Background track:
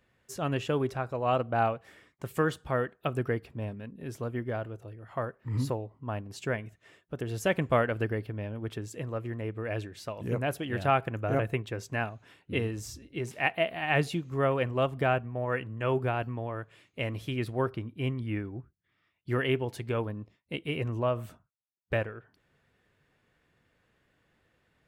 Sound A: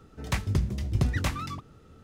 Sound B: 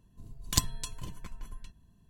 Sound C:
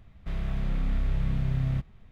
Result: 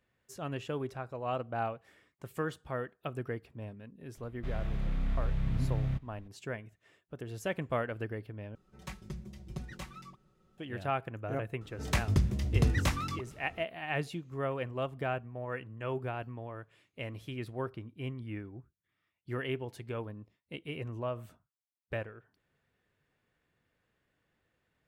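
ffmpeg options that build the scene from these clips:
-filter_complex "[1:a]asplit=2[a][b];[0:a]volume=-7.5dB[c];[a]aecho=1:1:5.4:0.99[d];[c]asplit=2[e][f];[e]atrim=end=8.554[g];[d]atrim=end=2.03,asetpts=PTS-STARTPTS,volume=-17dB[h];[f]atrim=start=10.576[i];[3:a]atrim=end=2.11,asetpts=PTS-STARTPTS,volume=-4.5dB,afade=t=in:d=0.004:c=hsin,afade=t=out:st=2.106:d=0.004:c=hsin,adelay=183897S[j];[b]atrim=end=2.03,asetpts=PTS-STARTPTS,volume=-1dB,afade=t=in:d=0.004:c=hsin,afade=t=out:st=2.026:d=0.004:c=hsin,adelay=11610[k];[g][h]acrossfade=d=0.004:c1=hsin:c2=hsin[l];[l][i]acrossfade=d=0.004:c1=hsin:c2=hsin[m];[m][j][k]amix=inputs=3:normalize=0"

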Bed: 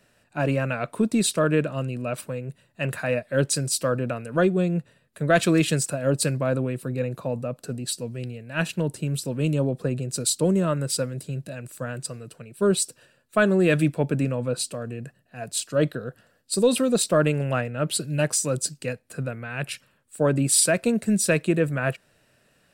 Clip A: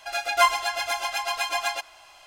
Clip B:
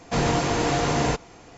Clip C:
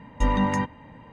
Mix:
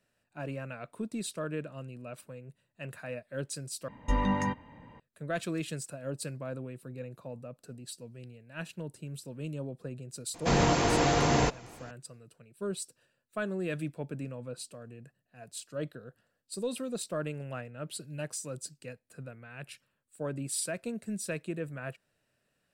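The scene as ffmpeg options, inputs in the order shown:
-filter_complex "[0:a]volume=-14.5dB,asplit=2[a][b];[a]atrim=end=3.884[c];[3:a]atrim=end=1.12,asetpts=PTS-STARTPTS,volume=-5.5dB[d];[b]atrim=start=4.996[e];[2:a]atrim=end=1.57,asetpts=PTS-STARTPTS,volume=-2.5dB,afade=t=in:d=0.004:c=hsin,afade=t=out:st=1.566:d=0.004:c=hsin,adelay=455994S[f];[c][d]acrossfade=d=0.004:c1=hsin:c2=hsin[g];[g][e]acrossfade=d=0.004:c1=hsin:c2=hsin[h];[h][f]amix=inputs=2:normalize=0"

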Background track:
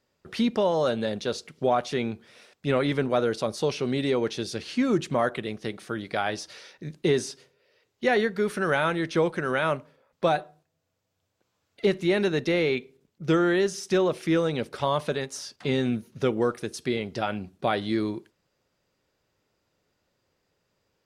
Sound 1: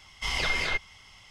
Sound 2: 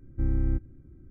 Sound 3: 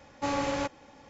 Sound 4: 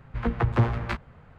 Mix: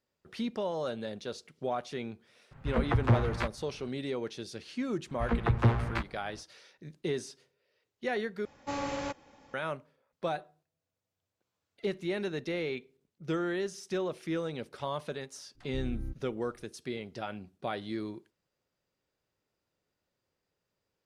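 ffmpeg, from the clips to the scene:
-filter_complex "[4:a]asplit=2[a][b];[0:a]volume=-10dB,asplit=2[c][d];[c]atrim=end=8.454[e];[3:a]atrim=end=1.09,asetpts=PTS-STARTPTS,volume=-5dB[f];[d]atrim=start=9.536[g];[a]atrim=end=1.38,asetpts=PTS-STARTPTS,volume=-3dB,afade=t=in:d=0.004:c=hsin,afade=t=out:st=1.376:d=0.004:c=hsin,adelay=2510[h];[b]atrim=end=1.38,asetpts=PTS-STARTPTS,volume=-3dB,afade=t=in:d=0.05,afade=t=out:st=1.33:d=0.05,adelay=5060[i];[2:a]atrim=end=1.1,asetpts=PTS-STARTPTS,volume=-12dB,afade=t=in:d=0.004:c=hsin,afade=t=out:st=1.096:d=0.004:c=hsin,adelay=15550[j];[e][f]acrossfade=d=0.004:c1=hsin:c2=hsin[k];[k][g]acrossfade=d=0.004:c1=hsin:c2=hsin[l];[l][h][i][j]amix=inputs=4:normalize=0"

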